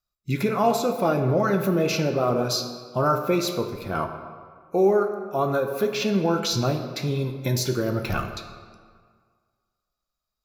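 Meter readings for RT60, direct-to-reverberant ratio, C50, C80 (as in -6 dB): 1.8 s, 6.0 dB, 7.5 dB, 9.0 dB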